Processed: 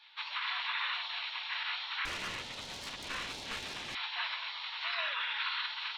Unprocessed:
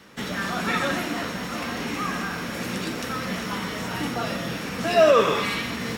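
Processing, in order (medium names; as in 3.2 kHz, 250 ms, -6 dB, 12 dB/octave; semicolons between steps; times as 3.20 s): Chebyshev band-pass 1–4.1 kHz, order 4; 2.05–3.95 s: valve stage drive 34 dB, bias 0.7; peak limiter -24.5 dBFS, peak gain reduction 11 dB; spectral gate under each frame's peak -10 dB weak; on a send: reverberation RT60 0.20 s, pre-delay 3 ms, DRR 16.5 dB; on the sum: trim +4 dB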